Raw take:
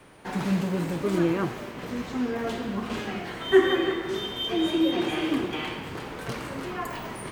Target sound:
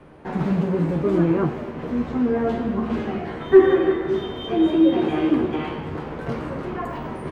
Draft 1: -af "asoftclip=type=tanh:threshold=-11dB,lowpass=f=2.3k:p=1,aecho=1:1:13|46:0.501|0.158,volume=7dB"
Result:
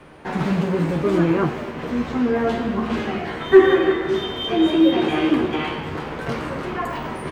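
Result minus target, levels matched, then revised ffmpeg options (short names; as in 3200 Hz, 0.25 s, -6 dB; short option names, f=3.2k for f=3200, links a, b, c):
2000 Hz band +5.5 dB
-af "asoftclip=type=tanh:threshold=-11dB,lowpass=f=690:p=1,aecho=1:1:13|46:0.501|0.158,volume=7dB"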